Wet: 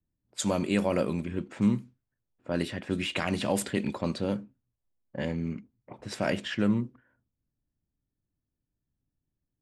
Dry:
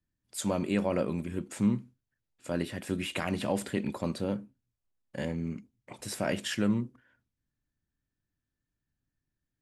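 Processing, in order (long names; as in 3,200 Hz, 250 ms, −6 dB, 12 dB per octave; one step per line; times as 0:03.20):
high-shelf EQ 3,800 Hz +7.5 dB, from 0:06.30 −2 dB
low-pass that shuts in the quiet parts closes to 750 Hz, open at −24.5 dBFS
level +2 dB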